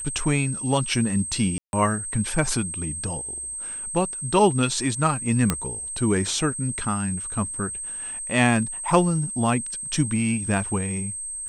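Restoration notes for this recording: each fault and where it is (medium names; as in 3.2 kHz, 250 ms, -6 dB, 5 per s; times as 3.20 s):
whine 8.3 kHz -30 dBFS
1.58–1.73 s: dropout 151 ms
5.50 s: pop -6 dBFS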